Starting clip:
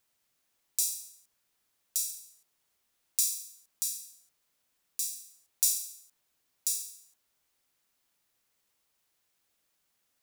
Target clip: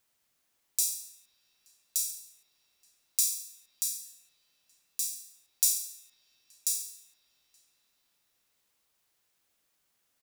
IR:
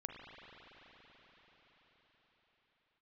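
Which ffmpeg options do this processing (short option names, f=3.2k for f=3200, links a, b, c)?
-filter_complex "[0:a]asplit=2[a][b];[b]adelay=874.6,volume=-20dB,highshelf=f=4k:g=-19.7[c];[a][c]amix=inputs=2:normalize=0,asplit=2[d][e];[1:a]atrim=start_sample=2205[f];[e][f]afir=irnorm=-1:irlink=0,volume=-7.5dB[g];[d][g]amix=inputs=2:normalize=0,volume=-1dB"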